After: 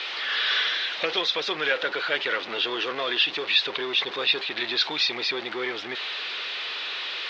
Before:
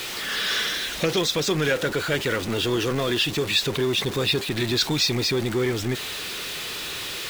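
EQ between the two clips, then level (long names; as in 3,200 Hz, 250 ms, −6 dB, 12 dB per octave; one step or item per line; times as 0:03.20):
band-pass filter 630–6,300 Hz
high-frequency loss of the air 300 metres
parametric band 4,000 Hz +8 dB 1.6 octaves
+1.5 dB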